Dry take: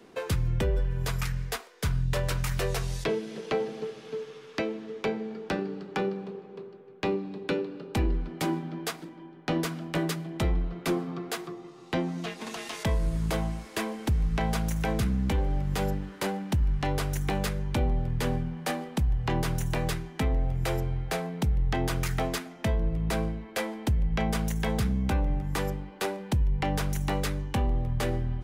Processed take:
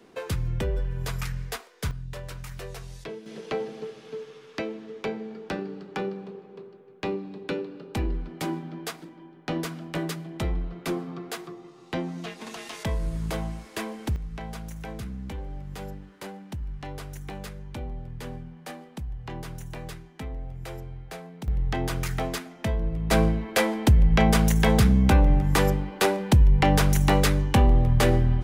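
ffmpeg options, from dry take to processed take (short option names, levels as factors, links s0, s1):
-af "asetnsamples=n=441:p=0,asendcmd='1.91 volume volume -9.5dB;3.26 volume volume -1.5dB;14.16 volume volume -9dB;21.48 volume volume 0dB;23.11 volume volume 8.5dB',volume=0.891"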